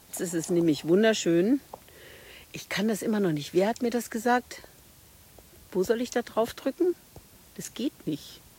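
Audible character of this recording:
a quantiser's noise floor 10 bits, dither triangular
Ogg Vorbis

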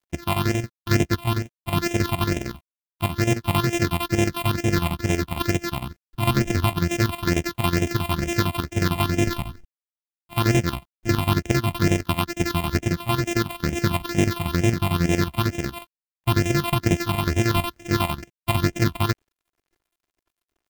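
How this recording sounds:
a buzz of ramps at a fixed pitch in blocks of 128 samples
phaser sweep stages 6, 2.2 Hz, lowest notch 420–1,200 Hz
a quantiser's noise floor 12 bits, dither none
chopped level 11 Hz, depth 65%, duty 65%

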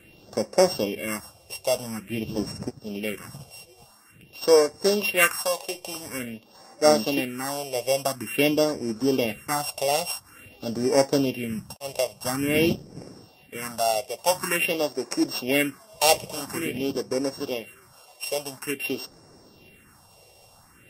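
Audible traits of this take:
a buzz of ramps at a fixed pitch in blocks of 16 samples
phaser sweep stages 4, 0.48 Hz, lowest notch 250–3,000 Hz
Ogg Vorbis

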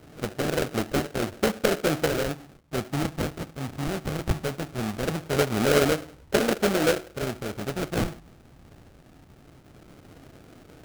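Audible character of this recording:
phaser sweep stages 4, 0.2 Hz, lowest notch 430–1,100 Hz
aliases and images of a low sample rate 1,000 Hz, jitter 20%

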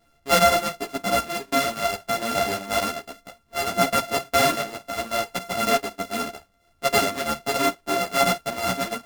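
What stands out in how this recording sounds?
a buzz of ramps at a fixed pitch in blocks of 64 samples
a shimmering, thickened sound

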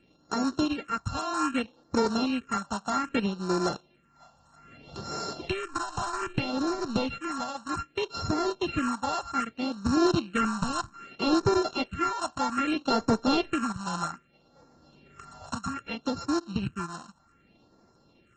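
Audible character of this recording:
a buzz of ramps at a fixed pitch in blocks of 32 samples
phaser sweep stages 4, 0.63 Hz, lowest notch 360–2,800 Hz
AAC

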